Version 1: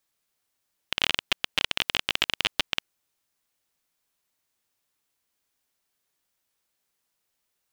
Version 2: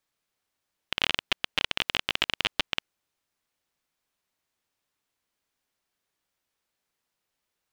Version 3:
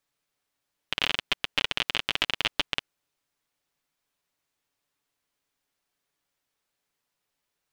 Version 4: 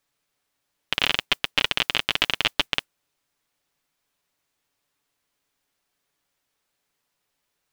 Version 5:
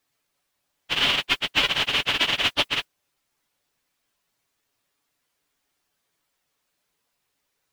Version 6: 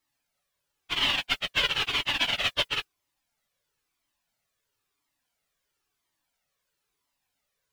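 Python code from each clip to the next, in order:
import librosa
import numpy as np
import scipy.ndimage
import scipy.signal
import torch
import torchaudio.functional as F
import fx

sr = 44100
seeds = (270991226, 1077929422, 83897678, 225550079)

y1 = fx.high_shelf(x, sr, hz=6000.0, db=-8.5)
y2 = y1 + 0.31 * np.pad(y1, (int(7.0 * sr / 1000.0), 0))[:len(y1)]
y3 = fx.mod_noise(y2, sr, seeds[0], snr_db=29)
y3 = y3 * librosa.db_to_amplitude(4.5)
y4 = fx.phase_scramble(y3, sr, seeds[1], window_ms=50)
y4 = y4 * librosa.db_to_amplitude(1.5)
y5 = fx.comb_cascade(y4, sr, direction='falling', hz=0.99)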